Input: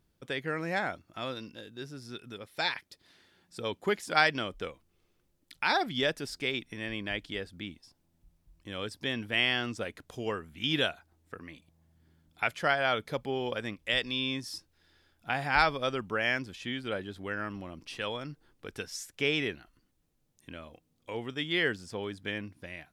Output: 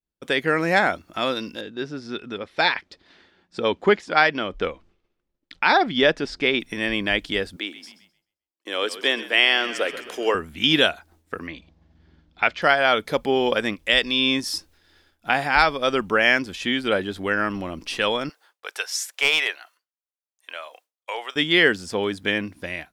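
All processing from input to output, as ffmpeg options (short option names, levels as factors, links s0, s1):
-filter_complex "[0:a]asettb=1/sr,asplit=3[s0][s1][s2];[s0]atrim=end=1.614[s3];[s1]atrim=start=1.61:end=6.6,asetpts=PTS-STARTPTS,afade=t=in:d=0.004:c=qsin,afade=t=out:st=4.986:d=0.004:c=qsin,lowpass=6400,aemphasis=mode=reproduction:type=50fm[s4];[s2]atrim=start=6.596[s5];[s3][s4]acrossfade=d=0.004:c1=hsin:c2=qsin[s6];[s6][s5]acrossfade=d=0.004:c1=qsin:c2=hsin,asettb=1/sr,asplit=3[s7][s8][s9];[s7]atrim=end=7.564[s10];[s8]atrim=start=7.56:end=10.35,asetpts=PTS-STARTPTS,afade=t=in:d=0.004:c=qsin,afade=t=out:st=2.786:d=0.004:c=qsin,highpass=f=330:w=0.5412,highpass=f=330:w=1.3066,asplit=7[s11][s12][s13][s14][s15][s16][s17];[s12]adelay=131,afreqshift=-40,volume=0.188[s18];[s13]adelay=262,afreqshift=-80,volume=0.106[s19];[s14]adelay=393,afreqshift=-120,volume=0.0589[s20];[s15]adelay=524,afreqshift=-160,volume=0.0331[s21];[s16]adelay=655,afreqshift=-200,volume=0.0186[s22];[s17]adelay=786,afreqshift=-240,volume=0.0104[s23];[s11][s18][s19][s20][s21][s22][s23]amix=inputs=7:normalize=0,atrim=end_sample=123039[s24];[s9]atrim=start=10.346[s25];[s10][s24]acrossfade=d=0.004:c1=hsin:c2=qsin[s26];[s26][s25]acrossfade=d=0.004:c1=qsin:c2=hsin,asettb=1/sr,asplit=3[s27][s28][s29];[s27]atrim=end=11.474[s30];[s28]atrim=start=11.47:end=12.62,asetpts=PTS-STARTPTS,afade=t=in:d=0.004:c=qsin,afade=t=out:st=1.146:d=0.004:c=qsin,lowpass=f=5100:w=0.5412,lowpass=f=5100:w=1.3066,aeval=exprs='val(0)+0.000398*(sin(2*PI*60*n/s)+sin(2*PI*2*60*n/s)/2+sin(2*PI*3*60*n/s)/3+sin(2*PI*4*60*n/s)/4+sin(2*PI*5*60*n/s)/5)':c=same[s31];[s29]atrim=start=12.616[s32];[s30][s31]acrossfade=d=0.004:c1=hsin:c2=qsin[s33];[s33][s32]acrossfade=d=0.004:c1=qsin:c2=hsin,asettb=1/sr,asplit=3[s34][s35][s36];[s34]atrim=end=18.294[s37];[s35]atrim=start=18.29:end=21.36,asetpts=PTS-STARTPTS,afade=t=in:d=0.004:c=qsin,afade=t=out:st=3.066:d=0.004:c=qsin,highpass=f=620:w=0.5412,highpass=f=620:w=1.3066,aeval=exprs='clip(val(0),-1,0.0531)':c=same[s38];[s36]atrim=start=21.356[s39];[s37][s38]acrossfade=d=0.004:c1=hsin:c2=qsin[s40];[s40][s39]acrossfade=d=0.004:c1=qsin:c2=hsin,agate=range=0.0224:threshold=0.001:ratio=3:detection=peak,equalizer=f=120:t=o:w=0.6:g=-12,dynaudnorm=f=140:g=3:m=5.01,volume=0.891"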